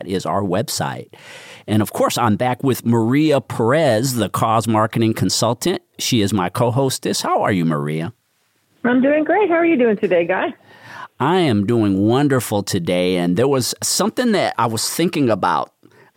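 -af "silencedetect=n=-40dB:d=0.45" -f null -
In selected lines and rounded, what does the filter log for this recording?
silence_start: 8.11
silence_end: 8.84 | silence_duration: 0.73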